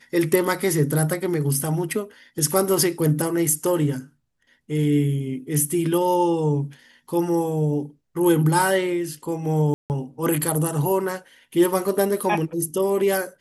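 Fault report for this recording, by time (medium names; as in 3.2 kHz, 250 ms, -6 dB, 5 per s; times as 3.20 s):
9.74–9.90 s: dropout 159 ms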